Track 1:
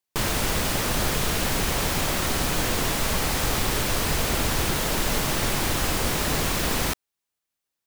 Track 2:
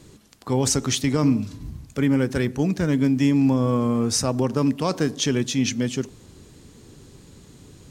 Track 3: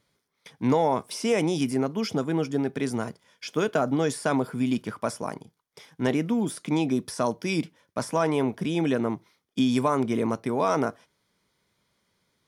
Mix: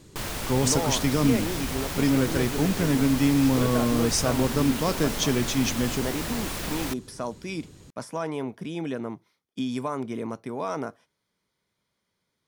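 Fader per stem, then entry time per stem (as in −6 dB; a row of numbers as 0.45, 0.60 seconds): −7.5, −2.5, −6.5 decibels; 0.00, 0.00, 0.00 seconds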